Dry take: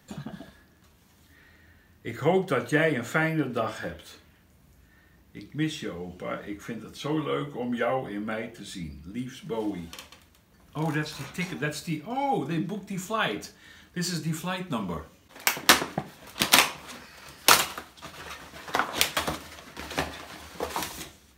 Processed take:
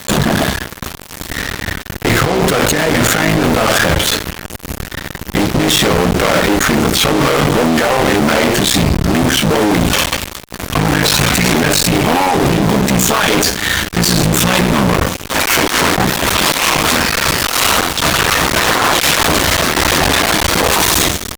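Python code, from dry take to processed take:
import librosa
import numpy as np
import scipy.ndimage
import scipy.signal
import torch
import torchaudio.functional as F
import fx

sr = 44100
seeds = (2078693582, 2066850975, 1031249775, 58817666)

y = fx.cycle_switch(x, sr, every=3, mode='muted')
y = fx.over_compress(y, sr, threshold_db=-36.0, ratio=-1.0)
y = fx.fuzz(y, sr, gain_db=49.0, gate_db=-51.0)
y = y * 10.0 ** (4.0 / 20.0)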